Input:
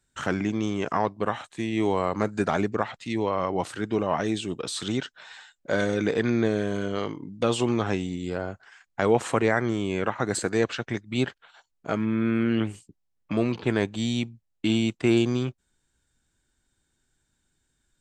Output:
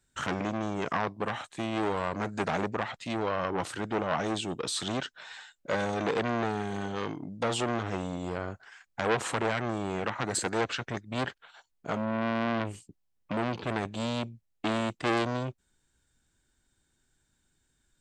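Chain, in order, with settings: transformer saturation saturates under 2.1 kHz

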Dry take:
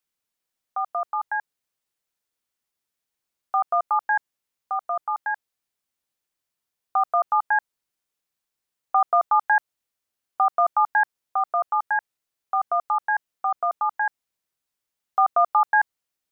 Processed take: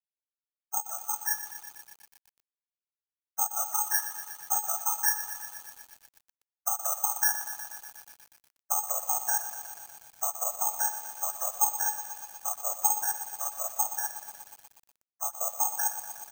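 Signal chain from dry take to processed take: formants replaced by sine waves; Doppler pass-by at 6.92 s, 15 m/s, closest 13 m; Chebyshev band-pass 370–1800 Hz, order 3; tilt EQ +5 dB/octave; comb 4.9 ms, depth 54%; level rider gain up to 13.5 dB; peak limiter -12 dBFS, peak gain reduction 11 dB; compression 6:1, threshold -23 dBFS, peak gain reduction 7.5 dB; whisper effect; feedback comb 850 Hz, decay 0.2 s, harmonics all, mix 80%; careless resampling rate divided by 6×, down filtered, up zero stuff; bit-crushed delay 121 ms, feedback 80%, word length 7-bit, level -11 dB; trim +1.5 dB

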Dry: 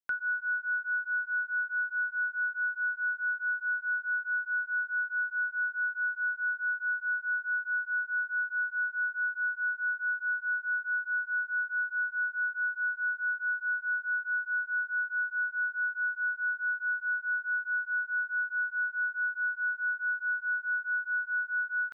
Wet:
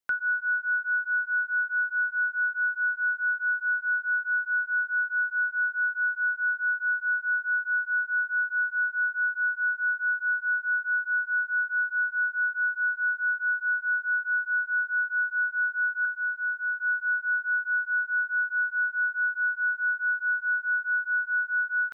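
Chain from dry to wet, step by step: 16.05–16.80 s: high-pass 1.4 kHz; trim +4.5 dB

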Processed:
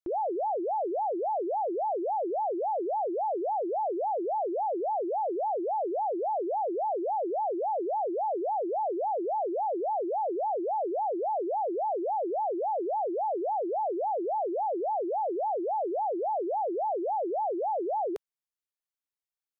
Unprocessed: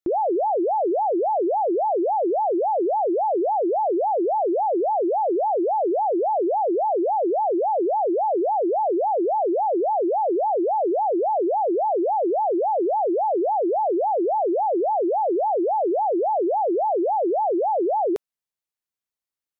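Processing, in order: peaking EQ 190 Hz -8 dB 1.7 oct; trim -6.5 dB

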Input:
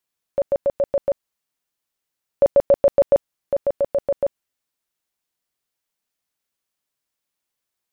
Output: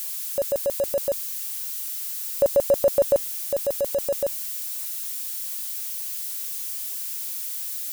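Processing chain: zero-crossing glitches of -24 dBFS; trim -3.5 dB

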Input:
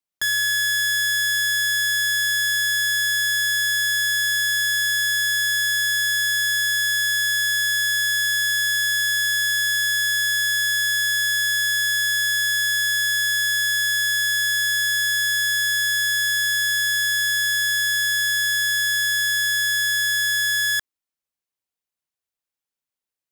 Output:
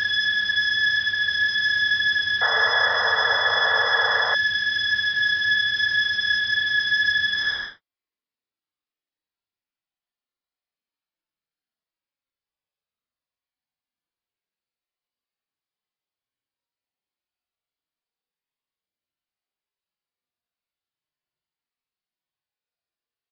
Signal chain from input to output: Paulstretch 11×, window 0.05 s, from 20.11 s; resampled via 11.025 kHz; painted sound noise, 2.41–4.35 s, 430–2000 Hz -25 dBFS

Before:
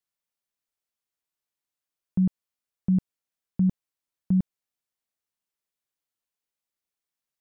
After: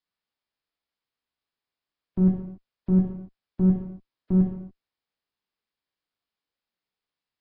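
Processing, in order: single-diode clipper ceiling -29.5 dBFS; gated-style reverb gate 310 ms falling, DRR -1.5 dB; Nellymoser 22 kbps 11.025 kHz

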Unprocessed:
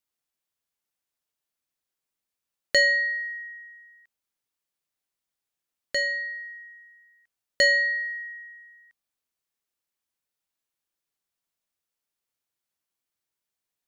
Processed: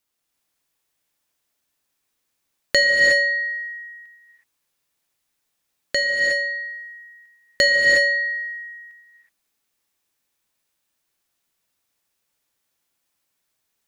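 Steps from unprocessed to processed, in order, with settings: in parallel at +3 dB: compression, threshold -30 dBFS, peak gain reduction 12.5 dB; on the sum: gated-style reverb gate 390 ms rising, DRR -1.5 dB

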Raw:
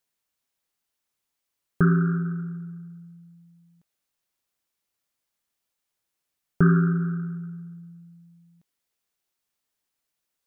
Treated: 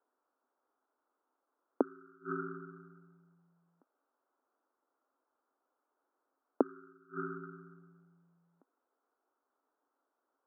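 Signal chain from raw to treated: inverted gate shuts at -20 dBFS, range -34 dB; Chebyshev band-pass 260–1400 Hz, order 4; trim +10 dB

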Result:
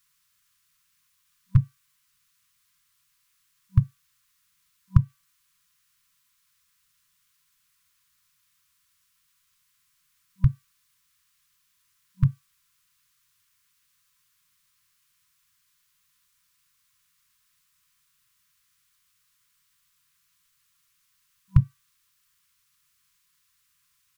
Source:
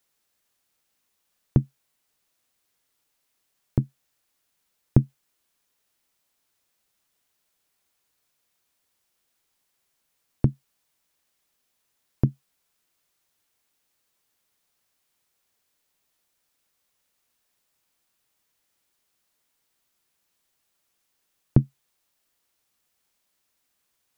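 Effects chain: de-hum 385.2 Hz, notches 12; harmony voices -4 st -6 dB; compression 3:1, threshold -15 dBFS, peak gain reduction 7 dB; FFT band-reject 190–990 Hz; trim +4.5 dB

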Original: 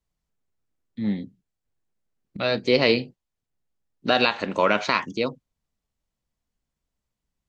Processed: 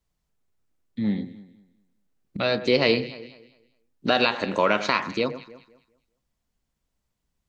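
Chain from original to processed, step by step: echo whose repeats swap between lows and highs 101 ms, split 1.9 kHz, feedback 52%, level -13 dB; in parallel at +1 dB: compression, threshold -29 dBFS, peak gain reduction 14 dB; on the sum: trim -3 dB

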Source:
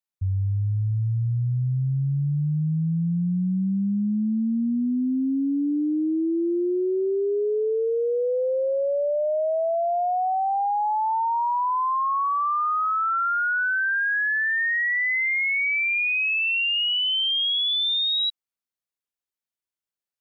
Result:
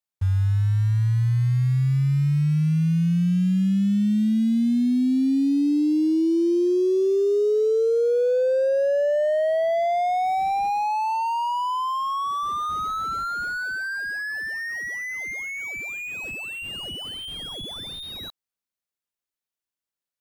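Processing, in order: in parallel at -7 dB: bit crusher 6-bit; on the sum: slew-rate limiter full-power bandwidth 61 Hz

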